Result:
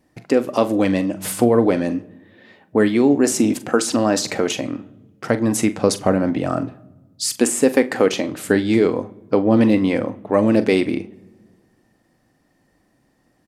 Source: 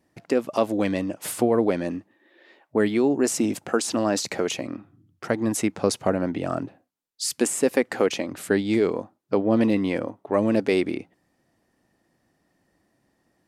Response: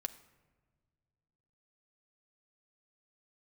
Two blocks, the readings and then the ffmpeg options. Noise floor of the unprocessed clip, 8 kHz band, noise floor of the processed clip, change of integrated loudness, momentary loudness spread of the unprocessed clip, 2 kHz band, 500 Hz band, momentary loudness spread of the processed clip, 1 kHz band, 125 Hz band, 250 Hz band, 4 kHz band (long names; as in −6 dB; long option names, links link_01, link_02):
−71 dBFS, +5.0 dB, −63 dBFS, +5.5 dB, 9 LU, +5.0 dB, +5.0 dB, 10 LU, +5.0 dB, +7.0 dB, +6.5 dB, +5.0 dB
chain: -filter_complex "[0:a]asplit=2[link_01][link_02];[link_02]adelay=42,volume=-13.5dB[link_03];[link_01][link_03]amix=inputs=2:normalize=0,asplit=2[link_04][link_05];[1:a]atrim=start_sample=2205,asetrate=61740,aresample=44100,lowshelf=frequency=140:gain=8.5[link_06];[link_05][link_06]afir=irnorm=-1:irlink=0,volume=7.5dB[link_07];[link_04][link_07]amix=inputs=2:normalize=0,volume=-3dB"